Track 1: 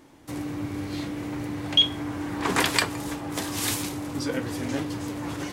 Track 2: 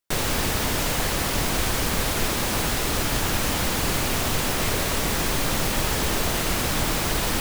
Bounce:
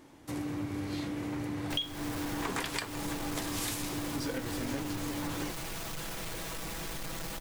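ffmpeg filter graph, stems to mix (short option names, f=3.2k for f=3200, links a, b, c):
-filter_complex "[0:a]volume=-2.5dB[a];[1:a]aecho=1:1:6.1:0.65,asoftclip=type=tanh:threshold=-22dB,adelay=1600,volume=-12.5dB[b];[a][b]amix=inputs=2:normalize=0,acompressor=threshold=-31dB:ratio=8"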